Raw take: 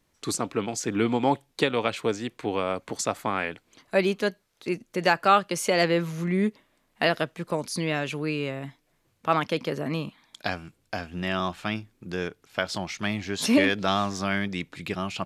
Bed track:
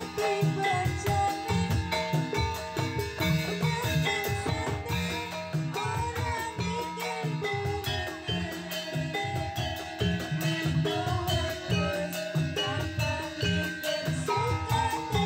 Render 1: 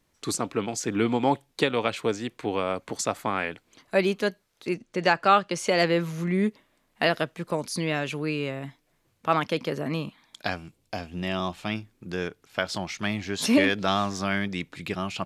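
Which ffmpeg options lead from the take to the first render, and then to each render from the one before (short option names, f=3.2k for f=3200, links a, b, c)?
-filter_complex "[0:a]asettb=1/sr,asplit=3[a][b][c];[a]atrim=end=4.744[d];[b]atrim=start=4.74:end=5.68,asetpts=PTS-STARTPTS,afade=t=in:d=0.004:c=qsin,afade=t=out:st=0.936:d=0.004:c=qsin,lowpass=7.2k[e];[c]atrim=start=5.676[f];[d][e]acrossfade=d=0.004:c1=hsin:c2=qsin[g];[g][f]acrossfade=d=0.004:c1=qsin:c2=hsin,asettb=1/sr,asplit=3[h][i][j];[h]atrim=end=10.564[k];[i]atrim=start=10.56:end=11.7,asetpts=PTS-STARTPTS,afade=t=in:d=0.004:c=qsin,afade=t=out:st=1.136:d=0.004:c=qsin,equalizer=f=1.5k:w=2.1:g=-7[l];[j]atrim=start=11.696[m];[k][l]acrossfade=d=0.004:c1=hsin:c2=qsin[n];[n][m]acrossfade=d=0.004:c1=qsin:c2=hsin"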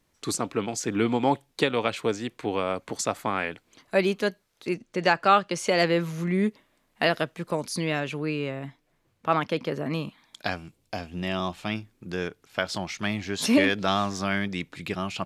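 -filter_complex "[0:a]asettb=1/sr,asplit=3[a][b][c];[a]atrim=end=8.004[d];[b]atrim=start=8:end=9.91,asetpts=PTS-STARTPTS,afade=t=in:d=0.004:c=qsin,afade=t=out:st=1.906:d=0.004:c=qsin,highshelf=f=4.2k:g=-6.5[e];[c]atrim=start=9.906[f];[d][e]acrossfade=d=0.004:c1=hsin:c2=qsin[g];[g][f]acrossfade=d=0.004:c1=qsin:c2=hsin"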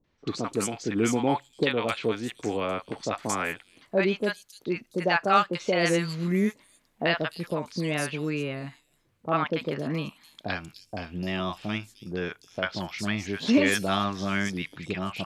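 -filter_complex "[0:a]acrossover=split=780|5100[a][b][c];[b]adelay=40[d];[c]adelay=300[e];[a][d][e]amix=inputs=3:normalize=0"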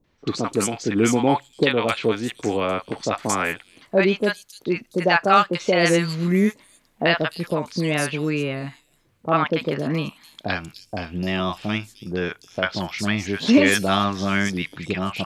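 -af "volume=6dB,alimiter=limit=-2dB:level=0:latency=1"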